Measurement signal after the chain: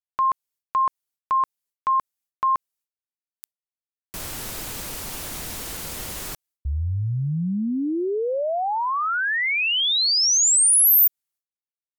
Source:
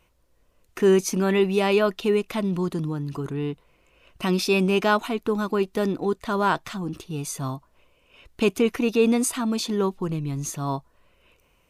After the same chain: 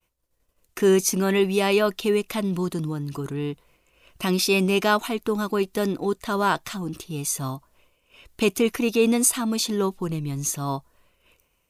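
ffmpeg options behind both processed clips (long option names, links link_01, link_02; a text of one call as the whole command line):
ffmpeg -i in.wav -af "aemphasis=mode=production:type=cd,agate=range=-33dB:threshold=-55dB:ratio=3:detection=peak" out.wav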